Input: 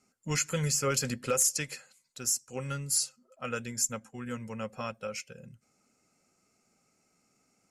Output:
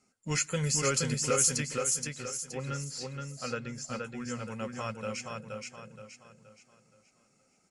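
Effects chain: short-mantissa float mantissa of 4-bit; 1.60–3.88 s: distance through air 160 m; feedback delay 473 ms, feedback 38%, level -3.5 dB; MP3 56 kbps 24 kHz

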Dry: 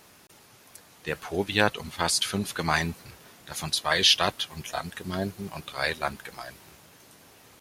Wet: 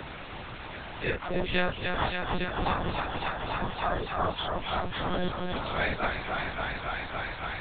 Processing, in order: phase randomisation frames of 100 ms; 2.12–4.38 s: steep low-pass 1.3 kHz; thinning echo 280 ms, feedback 83%, high-pass 280 Hz, level -7 dB; monotone LPC vocoder at 8 kHz 180 Hz; three bands compressed up and down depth 70%

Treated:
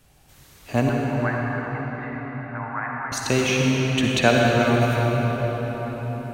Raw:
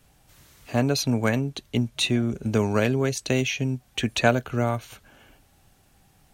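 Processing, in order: 0.89–3.12 s: Chebyshev band-pass 740–2000 Hz, order 4; reverberation RT60 6.2 s, pre-delay 51 ms, DRR -3 dB; trim +1.5 dB

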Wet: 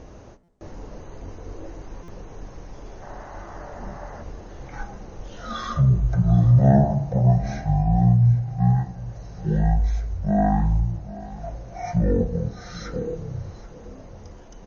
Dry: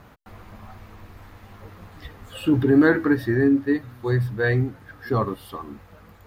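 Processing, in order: time-frequency box 1.30–1.80 s, 1.3–4.9 kHz +9 dB; in parallel at +3 dB: compression, threshold -31 dBFS, peak gain reduction 18 dB; on the sum: delay 334 ms -17.5 dB; on a send at -23.5 dB: reverberation RT60 3.1 s, pre-delay 6 ms; on the sum: flange 0.58 Hz, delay 7.2 ms, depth 1.6 ms, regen -87%; speed mistake 78 rpm record played at 33 rpm; buffer glitch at 0.43/2.03 s, samples 256, times 8; trim +3 dB

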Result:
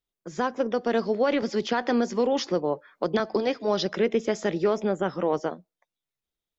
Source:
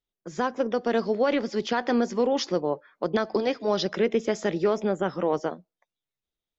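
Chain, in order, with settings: 1.42–3.20 s: three bands compressed up and down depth 40%

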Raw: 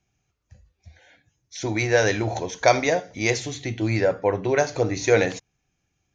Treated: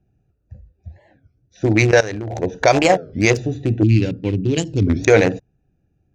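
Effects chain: local Wiener filter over 41 samples; 1.91–2.43 s: level held to a coarse grid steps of 19 dB; 3.83–4.89 s: FFT filter 290 Hz 0 dB, 630 Hz -26 dB, 1.8 kHz -18 dB, 2.7 kHz 0 dB, 5.9 kHz -4 dB, 8.8 kHz -10 dB; loudness maximiser +12.5 dB; warped record 33 1/3 rpm, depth 250 cents; trim -1 dB

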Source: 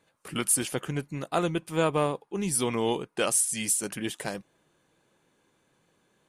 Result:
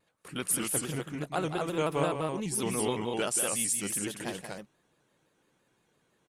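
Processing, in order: loudspeakers at several distances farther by 62 m -8 dB, 83 m -3 dB; vibrato with a chosen wave square 5.9 Hz, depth 100 cents; trim -5 dB

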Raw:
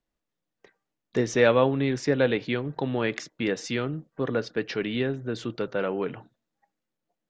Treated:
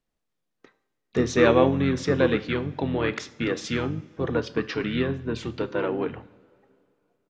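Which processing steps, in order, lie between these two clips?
resampled via 32 kHz; two-slope reverb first 0.53 s, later 2.8 s, from -18 dB, DRR 12 dB; harmony voices -7 st -5 dB

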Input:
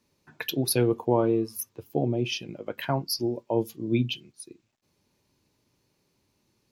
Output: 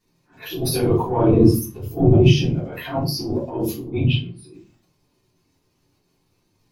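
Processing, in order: phase randomisation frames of 50 ms; 3.84–4.47 s: boxcar filter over 7 samples; transient shaper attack -12 dB, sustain +9 dB; 1.28–2.60 s: bass shelf 380 Hz +10.5 dB; simulated room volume 160 m³, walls furnished, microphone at 3.4 m; trim -3.5 dB

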